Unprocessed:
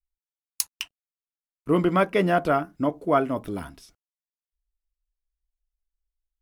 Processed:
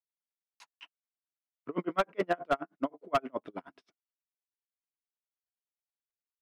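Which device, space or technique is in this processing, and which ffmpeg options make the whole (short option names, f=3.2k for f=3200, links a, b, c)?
helicopter radio: -af "highpass=310,lowpass=2.6k,aeval=exprs='val(0)*pow(10,-37*(0.5-0.5*cos(2*PI*9.5*n/s))/20)':c=same,asoftclip=type=hard:threshold=-20dB"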